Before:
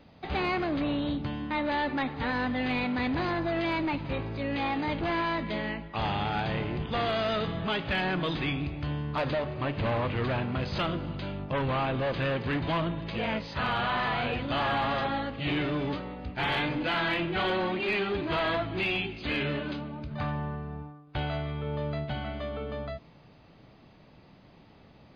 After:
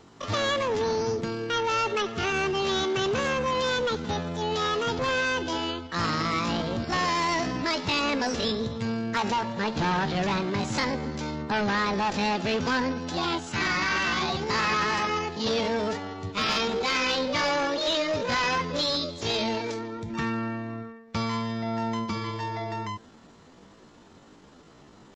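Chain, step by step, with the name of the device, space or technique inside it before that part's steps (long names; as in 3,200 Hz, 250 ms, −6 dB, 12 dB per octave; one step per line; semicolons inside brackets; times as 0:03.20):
chipmunk voice (pitch shifter +7.5 semitones)
level +3 dB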